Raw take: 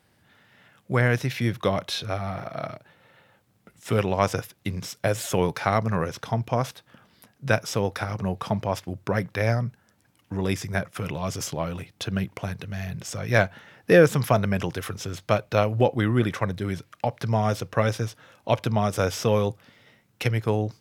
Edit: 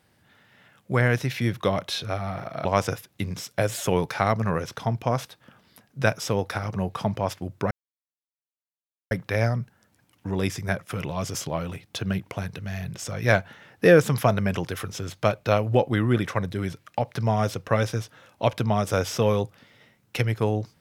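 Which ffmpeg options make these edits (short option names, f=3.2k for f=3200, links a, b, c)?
-filter_complex "[0:a]asplit=3[a][b][c];[a]atrim=end=2.652[d];[b]atrim=start=4.108:end=9.17,asetpts=PTS-STARTPTS,afade=t=out:st=5.058:d=0.004:c=hsin,apad=pad_dur=1.4[e];[c]atrim=start=9.17,asetpts=PTS-STARTPTS,afade=t=in:d=0.004:c=hsin[f];[e][f]concat=n=2:v=0:a=1[g];[d][g]acrossfade=d=0.004:c1=hsin:c2=hsin"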